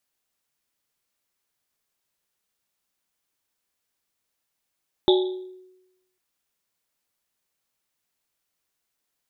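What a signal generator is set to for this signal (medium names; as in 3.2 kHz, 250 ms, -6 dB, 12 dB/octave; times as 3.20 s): Risset drum, pitch 370 Hz, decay 0.98 s, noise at 3.6 kHz, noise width 490 Hz, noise 20%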